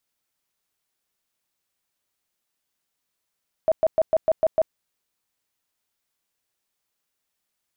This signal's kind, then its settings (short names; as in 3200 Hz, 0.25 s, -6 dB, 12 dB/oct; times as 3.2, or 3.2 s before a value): tone bursts 640 Hz, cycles 24, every 0.15 s, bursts 7, -14.5 dBFS